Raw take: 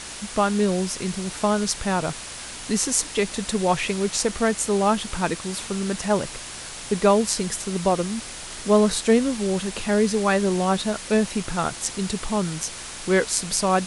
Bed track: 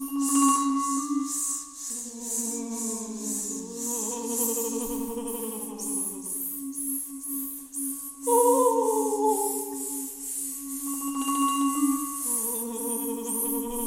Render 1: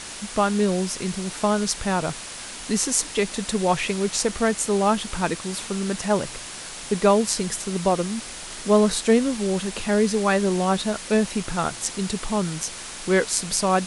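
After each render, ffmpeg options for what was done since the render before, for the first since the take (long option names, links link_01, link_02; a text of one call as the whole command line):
ffmpeg -i in.wav -af "bandreject=frequency=60:width_type=h:width=4,bandreject=frequency=120:width_type=h:width=4" out.wav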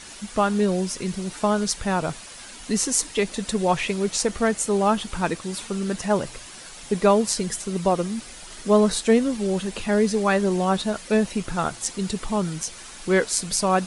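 ffmpeg -i in.wav -af "afftdn=noise_reduction=8:noise_floor=-37" out.wav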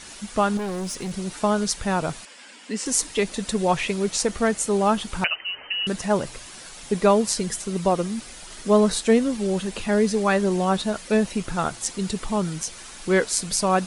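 ffmpeg -i in.wav -filter_complex "[0:a]asettb=1/sr,asplit=3[link_01][link_02][link_03];[link_01]atrim=end=0.574[link_04];[link_02]atrim=start=0.57:end=1.13,asetpts=PTS-STARTPTS,afade=type=in:duration=0.004:curve=qsin,afade=type=out:start_time=0.556:duration=0.004:curve=qsin,volume=26dB,asoftclip=hard,volume=-26dB[link_05];[link_03]atrim=start=1.126[link_06];[link_04][link_05]acrossfade=duration=0.004:curve1=hsin:curve2=qsin[link_07];[link_07][link_06]acrossfade=duration=0.004:curve1=qsin:curve2=hsin,asettb=1/sr,asplit=3[link_08][link_09][link_10];[link_08]atrim=end=2.254[link_11];[link_09]atrim=start=2.25:end=2.86,asetpts=PTS-STARTPTS,afade=type=in:duration=0.004:curve=qsin,afade=type=out:start_time=0.606:duration=0.004:curve=qsin,highpass=frequency=240:width=0.5412,highpass=frequency=240:width=1.3066,equalizer=frequency=370:width_type=q:width=4:gain=-7,equalizer=frequency=700:width_type=q:width=4:gain=-7,equalizer=frequency=1200:width_type=q:width=4:gain=-6,equalizer=frequency=4000:width_type=q:width=4:gain=-7,equalizer=frequency=6200:width_type=q:width=4:gain=-10,lowpass=frequency=7500:width=0.5412,lowpass=frequency=7500:width=1.3066[link_12];[link_10]atrim=start=2.856[link_13];[link_11][link_12]acrossfade=duration=0.004:curve1=hsin:curve2=qsin[link_14];[link_14][link_13]acrossfade=duration=0.004:curve1=qsin:curve2=hsin,asettb=1/sr,asplit=3[link_15][link_16][link_17];[link_15]atrim=end=5.244[link_18];[link_16]atrim=start=5.24:end=5.87,asetpts=PTS-STARTPTS,afade=type=in:duration=0.004:curve=qsin,afade=type=out:start_time=0.626:duration=0.004:curve=qsin,lowpass=frequency=2600:width_type=q:width=0.5098,lowpass=frequency=2600:width_type=q:width=0.6013,lowpass=frequency=2600:width_type=q:width=0.9,lowpass=frequency=2600:width_type=q:width=2.563,afreqshift=-3100[link_19];[link_17]atrim=start=5.866[link_20];[link_18][link_19]acrossfade=duration=0.004:curve1=hsin:curve2=qsin[link_21];[link_21][link_20]acrossfade=duration=0.004:curve1=qsin:curve2=hsin" out.wav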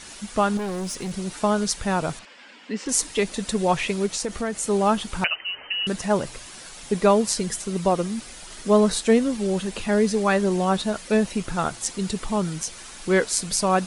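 ffmpeg -i in.wav -filter_complex "[0:a]asettb=1/sr,asplit=3[link_01][link_02][link_03];[link_01]atrim=end=2.194[link_04];[link_02]atrim=start=2.19:end=2.89,asetpts=PTS-STARTPTS,afade=type=in:duration=0.004:curve=qsin,afade=type=out:start_time=0.696:duration=0.004:curve=qsin,lowpass=3900[link_05];[link_03]atrim=start=2.886[link_06];[link_04][link_05]acrossfade=duration=0.004:curve1=hsin:curve2=qsin[link_07];[link_07][link_06]acrossfade=duration=0.004:curve1=qsin:curve2=hsin,asplit=3[link_08][link_09][link_10];[link_08]afade=type=out:start_time=4.06:duration=0.02[link_11];[link_09]acompressor=threshold=-25dB:ratio=2.5:attack=3.2:release=140:knee=1:detection=peak,afade=type=in:start_time=4.06:duration=0.02,afade=type=out:start_time=4.62:duration=0.02[link_12];[link_10]afade=type=in:start_time=4.62:duration=0.02[link_13];[link_11][link_12][link_13]amix=inputs=3:normalize=0" out.wav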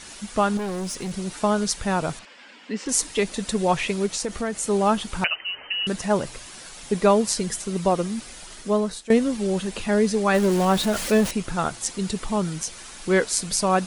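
ffmpeg -i in.wav -filter_complex "[0:a]asettb=1/sr,asplit=3[link_01][link_02][link_03];[link_01]atrim=end=10.344[link_04];[link_02]atrim=start=10.34:end=11.31,asetpts=PTS-STARTPTS,afade=type=in:duration=0.004:curve=qsin,afade=type=out:start_time=0.966:duration=0.004:curve=qsin,aeval=exprs='val(0)+0.5*0.0531*sgn(val(0))':channel_layout=same[link_05];[link_03]atrim=start=11.306[link_06];[link_04][link_05]acrossfade=duration=0.004:curve1=hsin:curve2=qsin[link_07];[link_07][link_06]acrossfade=duration=0.004:curve1=qsin:curve2=hsin,asplit=2[link_08][link_09];[link_08]atrim=end=9.1,asetpts=PTS-STARTPTS,afade=type=out:start_time=8.43:duration=0.67:silence=0.141254[link_10];[link_09]atrim=start=9.1,asetpts=PTS-STARTPTS,afade=type=in:duration=0.004:curve=hsin:silence=0.141254[link_11];[link_10][link_11]concat=n=2:v=0:a=1" out.wav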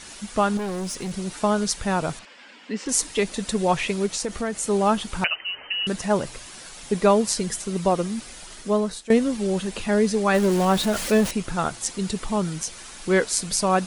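ffmpeg -i in.wav -af anull out.wav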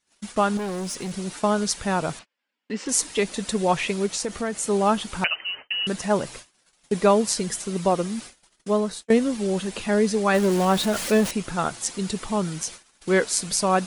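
ffmpeg -i in.wav -af "agate=range=-35dB:threshold=-37dB:ratio=16:detection=peak,lowshelf=frequency=66:gain=-9" out.wav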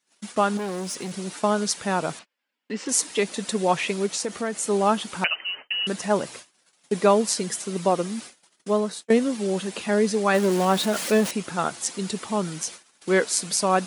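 ffmpeg -i in.wav -af "highpass=170" out.wav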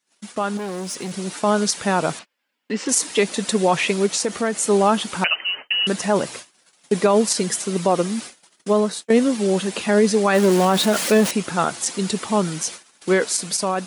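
ffmpeg -i in.wav -af "alimiter=limit=-12.5dB:level=0:latency=1:release=32,dynaudnorm=framelen=440:gausssize=5:maxgain=6dB" out.wav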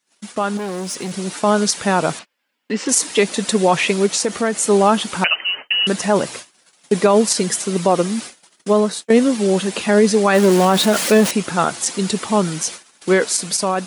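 ffmpeg -i in.wav -af "volume=3dB" out.wav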